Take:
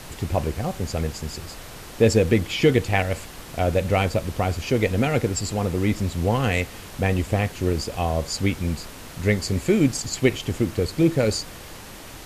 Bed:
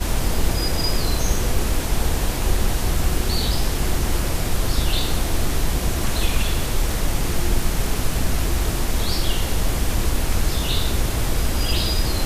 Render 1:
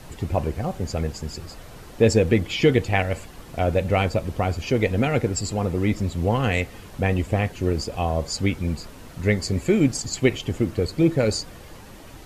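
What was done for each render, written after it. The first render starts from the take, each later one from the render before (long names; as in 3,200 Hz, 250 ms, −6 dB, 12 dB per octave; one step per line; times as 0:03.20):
broadband denoise 8 dB, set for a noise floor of −40 dBFS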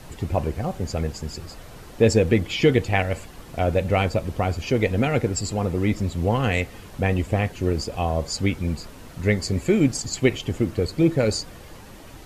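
no processing that can be heard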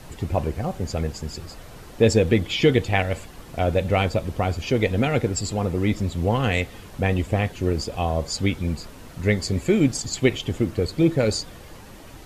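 dynamic equaliser 3,500 Hz, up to +6 dB, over −51 dBFS, Q 5.7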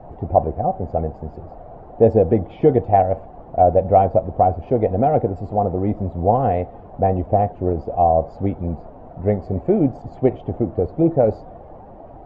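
low-pass with resonance 720 Hz, resonance Q 4.9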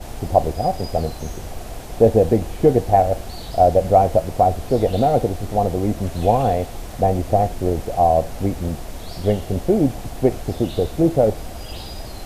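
mix in bed −12.5 dB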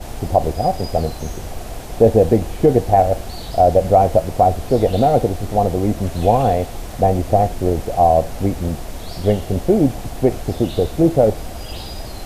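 level +2.5 dB
brickwall limiter −2 dBFS, peak gain reduction 3 dB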